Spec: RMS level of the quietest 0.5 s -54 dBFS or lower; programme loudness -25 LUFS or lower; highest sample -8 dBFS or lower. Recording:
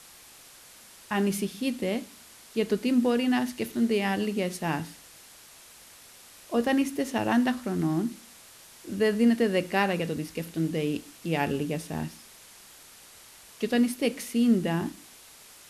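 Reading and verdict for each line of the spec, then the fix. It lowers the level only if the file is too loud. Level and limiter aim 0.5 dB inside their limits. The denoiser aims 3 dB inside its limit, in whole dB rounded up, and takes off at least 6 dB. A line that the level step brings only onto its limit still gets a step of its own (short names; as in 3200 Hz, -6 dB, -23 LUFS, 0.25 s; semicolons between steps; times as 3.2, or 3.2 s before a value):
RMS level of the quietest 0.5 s -51 dBFS: fail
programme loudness -27.5 LUFS: OK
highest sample -11.0 dBFS: OK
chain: denoiser 6 dB, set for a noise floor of -51 dBFS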